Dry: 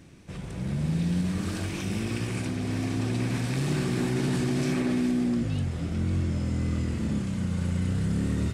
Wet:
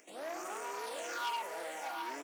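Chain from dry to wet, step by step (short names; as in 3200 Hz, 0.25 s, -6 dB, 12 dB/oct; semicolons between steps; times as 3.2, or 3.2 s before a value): tracing distortion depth 0.39 ms; HPF 62 Hz 24 dB/oct; tone controls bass -10 dB, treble -13 dB; upward compressor, threshold -50 dBFS; wide varispeed 3.82×; resonator 160 Hz, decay 1.6 s, mix 80%; phaser stages 6, 0.46 Hz, lowest notch 280–3800 Hz; echo 0.732 s -6.5 dB; core saturation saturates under 3000 Hz; gain +9.5 dB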